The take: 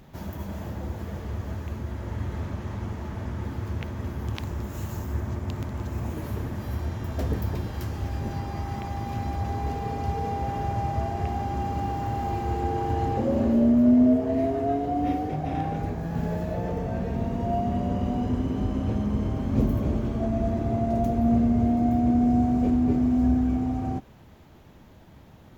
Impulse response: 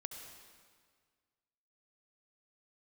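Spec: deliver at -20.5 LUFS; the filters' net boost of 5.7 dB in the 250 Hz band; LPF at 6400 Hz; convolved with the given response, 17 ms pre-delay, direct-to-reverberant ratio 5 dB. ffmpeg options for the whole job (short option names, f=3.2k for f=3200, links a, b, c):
-filter_complex "[0:a]lowpass=6.4k,equalizer=f=250:t=o:g=6,asplit=2[a][b];[1:a]atrim=start_sample=2205,adelay=17[c];[b][c]afir=irnorm=-1:irlink=0,volume=-2.5dB[d];[a][d]amix=inputs=2:normalize=0"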